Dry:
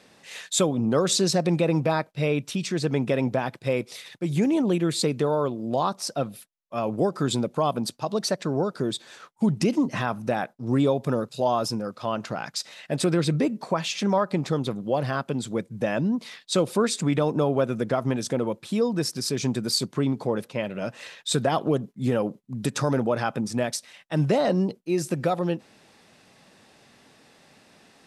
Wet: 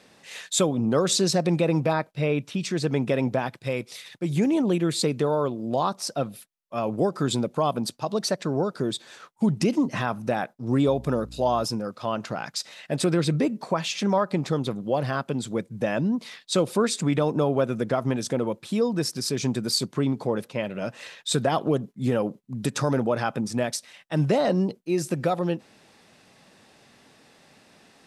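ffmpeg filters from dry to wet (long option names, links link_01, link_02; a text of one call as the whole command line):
ffmpeg -i in.wav -filter_complex "[0:a]asettb=1/sr,asplit=3[link_01][link_02][link_03];[link_01]atrim=end=1.934[link_04];[link_02]atrim=start=1.93:end=2.62,asetpts=PTS-STARTPTS,afade=type=in:duration=0.004:curve=qsin,afade=type=out:start_time=0.686:duration=0.004:curve=qsin,acrossover=split=3400[link_05][link_06];[link_06]acompressor=threshold=-47dB:ratio=4:attack=1:release=60[link_07];[link_05][link_07]amix=inputs=2:normalize=0[link_08];[link_03]atrim=start=2.616[link_09];[link_04][link_08]acrossfade=duration=0.004:curve1=hsin:curve2=qsin[link_10];[link_10][link_09]acrossfade=duration=0.004:curve1=qsin:curve2=hsin,asettb=1/sr,asplit=3[link_11][link_12][link_13];[link_11]atrim=end=3.474[link_14];[link_12]atrim=start=3.47:end=4.14,asetpts=PTS-STARTPTS,afade=type=in:duration=0.004:curve=qsin,afade=type=out:start_time=0.666:duration=0.004:curve=qsin,equalizer=frequency=430:width_type=o:width=2.6:gain=-4[link_15];[link_13]atrim=start=4.136[link_16];[link_14][link_15]acrossfade=duration=0.004:curve1=hsin:curve2=qsin[link_17];[link_17][link_16]acrossfade=duration=0.004:curve1=qsin:curve2=hsin,asettb=1/sr,asplit=3[link_18][link_19][link_20];[link_18]atrim=end=10.874[link_21];[link_19]atrim=start=10.87:end=11.64,asetpts=PTS-STARTPTS,afade=type=in:duration=0.004:curve=qsin,afade=type=out:start_time=0.766:duration=0.004:curve=qsin,aeval=exprs='val(0)+0.00794*(sin(2*PI*60*n/s)+sin(2*PI*2*60*n/s)/2+sin(2*PI*3*60*n/s)/3+sin(2*PI*4*60*n/s)/4+sin(2*PI*5*60*n/s)/5)':channel_layout=same[link_22];[link_20]atrim=start=11.636[link_23];[link_21][link_22]acrossfade=duration=0.004:curve1=hsin:curve2=qsin[link_24];[link_24][link_23]acrossfade=duration=0.004:curve1=qsin:curve2=hsin" out.wav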